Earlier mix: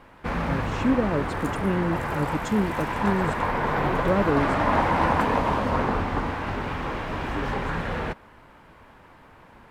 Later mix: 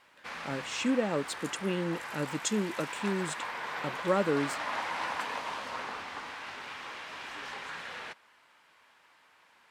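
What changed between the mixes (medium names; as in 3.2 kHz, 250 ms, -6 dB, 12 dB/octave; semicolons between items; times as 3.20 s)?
speech: add tilt EQ +3.5 dB/octave; background: add band-pass filter 5.8 kHz, Q 0.65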